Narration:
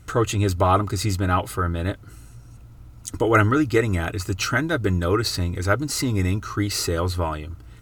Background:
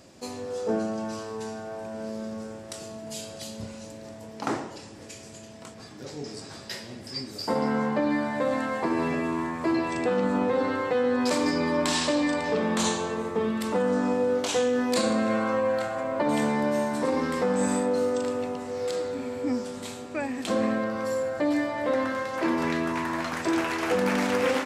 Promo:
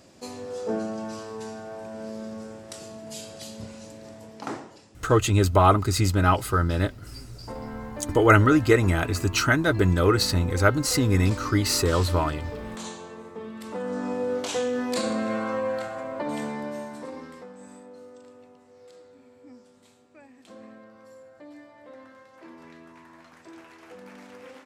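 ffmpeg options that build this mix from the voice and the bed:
-filter_complex "[0:a]adelay=4950,volume=1dB[a];[1:a]volume=7.5dB,afade=t=out:st=4.17:d=0.71:silence=0.316228,afade=t=in:st=13.51:d=0.83:silence=0.354813,afade=t=out:st=15.67:d=1.87:silence=0.11885[b];[a][b]amix=inputs=2:normalize=0"

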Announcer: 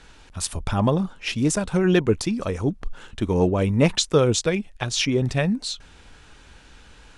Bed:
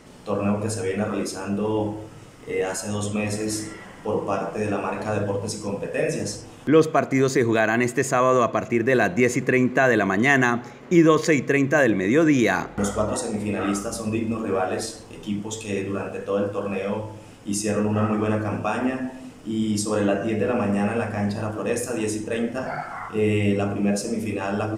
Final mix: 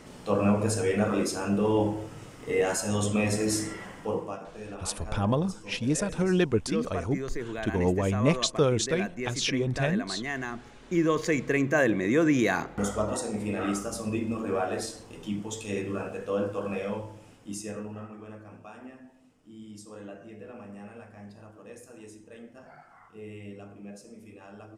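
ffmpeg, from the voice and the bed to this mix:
-filter_complex "[0:a]adelay=4450,volume=-5.5dB[a];[1:a]volume=10dB,afade=t=out:st=3.85:d=0.53:silence=0.177828,afade=t=in:st=10.46:d=1.22:silence=0.298538,afade=t=out:st=16.73:d=1.36:silence=0.149624[b];[a][b]amix=inputs=2:normalize=0"

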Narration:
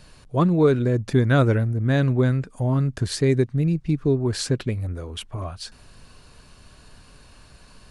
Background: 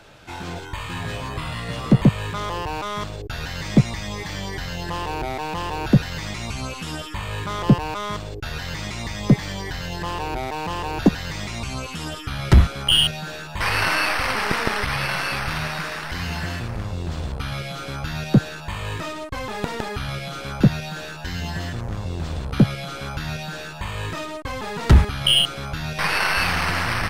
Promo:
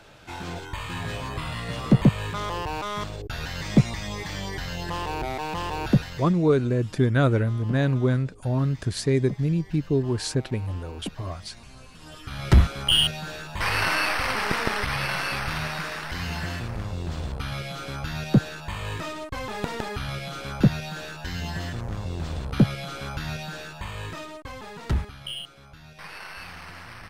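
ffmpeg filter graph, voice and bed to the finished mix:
-filter_complex "[0:a]adelay=5850,volume=-2.5dB[a];[1:a]volume=13.5dB,afade=t=out:st=5.83:d=0.54:silence=0.149624,afade=t=in:st=12:d=0.55:silence=0.158489,afade=t=out:st=23.3:d=2.07:silence=0.158489[b];[a][b]amix=inputs=2:normalize=0"

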